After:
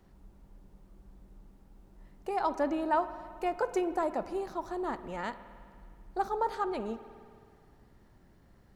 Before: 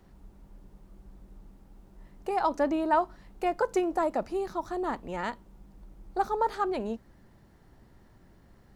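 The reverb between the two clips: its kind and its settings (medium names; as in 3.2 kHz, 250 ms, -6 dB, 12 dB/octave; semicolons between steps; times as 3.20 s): spring tank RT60 2.2 s, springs 52 ms, chirp 25 ms, DRR 12.5 dB; trim -3.5 dB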